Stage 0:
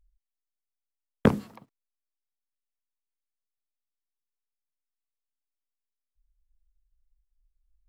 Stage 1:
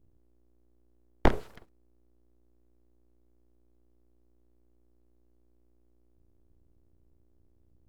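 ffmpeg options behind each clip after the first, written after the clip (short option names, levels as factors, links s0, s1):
-filter_complex "[0:a]acrossover=split=3600[s0][s1];[s1]acompressor=threshold=0.00126:ratio=4:attack=1:release=60[s2];[s0][s2]amix=inputs=2:normalize=0,aeval=exprs='val(0)+0.000708*(sin(2*PI*60*n/s)+sin(2*PI*2*60*n/s)/2+sin(2*PI*3*60*n/s)/3+sin(2*PI*4*60*n/s)/4+sin(2*PI*5*60*n/s)/5)':c=same,aeval=exprs='abs(val(0))':c=same"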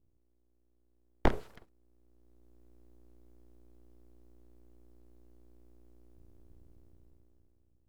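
-af "dynaudnorm=f=220:g=9:m=5.62,volume=0.422"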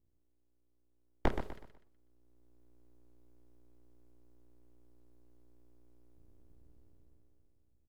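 -af "aecho=1:1:124|248|372|496:0.376|0.128|0.0434|0.0148,volume=0.596"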